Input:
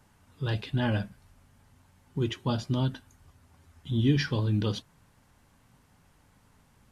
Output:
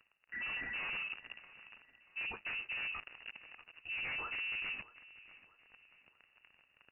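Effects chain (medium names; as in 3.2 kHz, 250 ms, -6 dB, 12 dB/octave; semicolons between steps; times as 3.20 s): spectral replace 0.35–0.82 s, 650–1400 Hz after; integer overflow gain 19 dB; dynamic bell 160 Hz, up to +7 dB, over -49 dBFS, Q 3.9; waveshaping leveller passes 5; reverse; compression 6:1, threshold -40 dBFS, peak gain reduction 20 dB; reverse; on a send: feedback delay 635 ms, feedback 41%, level -19 dB; on the sum: frequency inversion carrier 2.8 kHz; trim -2.5 dB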